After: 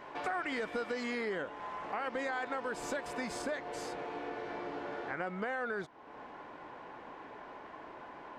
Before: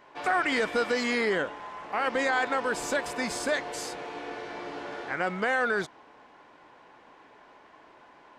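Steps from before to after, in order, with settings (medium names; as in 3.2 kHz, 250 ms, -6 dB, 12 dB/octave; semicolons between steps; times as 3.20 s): treble shelf 2.9 kHz -6.5 dB, from 3.42 s -11.5 dB; compression 2.5:1, threshold -49 dBFS, peak gain reduction 17 dB; trim +7 dB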